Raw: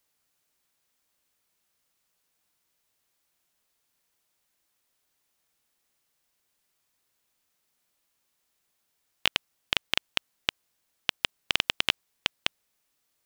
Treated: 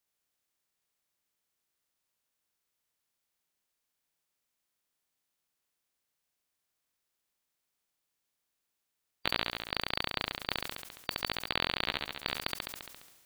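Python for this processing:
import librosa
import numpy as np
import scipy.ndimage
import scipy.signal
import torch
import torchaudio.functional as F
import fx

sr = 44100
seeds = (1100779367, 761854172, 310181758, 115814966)

y = fx.spec_quant(x, sr, step_db=30)
y = fx.room_flutter(y, sr, wall_m=11.8, rt60_s=0.65)
y = fx.sustainer(y, sr, db_per_s=41.0)
y = y * 10.0 ** (-8.5 / 20.0)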